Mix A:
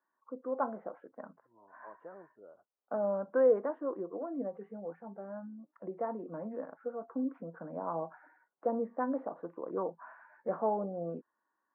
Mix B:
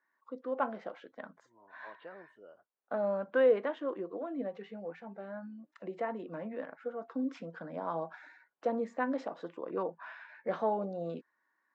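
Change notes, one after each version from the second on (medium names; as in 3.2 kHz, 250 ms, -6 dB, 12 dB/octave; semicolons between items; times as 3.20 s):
master: remove low-pass 1.3 kHz 24 dB/octave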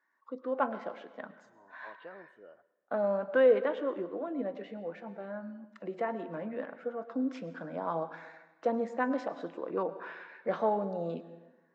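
reverb: on, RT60 1.1 s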